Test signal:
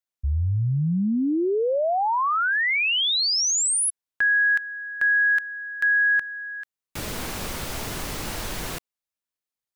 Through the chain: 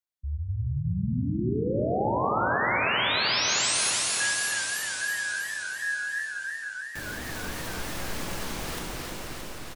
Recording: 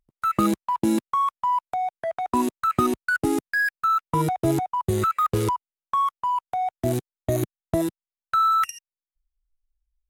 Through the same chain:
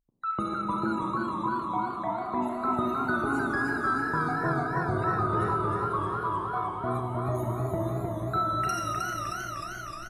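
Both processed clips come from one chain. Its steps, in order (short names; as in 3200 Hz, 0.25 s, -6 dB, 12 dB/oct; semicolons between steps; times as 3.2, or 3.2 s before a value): spectral gate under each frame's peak -30 dB strong; dynamic EQ 280 Hz, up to -4 dB, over -36 dBFS, Q 2.2; reverse; upward compressor, threshold -26 dBFS; reverse; resonator 61 Hz, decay 1.7 s, harmonics all, mix 50%; on a send: echo 0.49 s -11 dB; on the sum: Schroeder reverb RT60 3.6 s, combs from 29 ms, DRR 0 dB; warbling echo 0.309 s, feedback 72%, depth 95 cents, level -4 dB; gain -3.5 dB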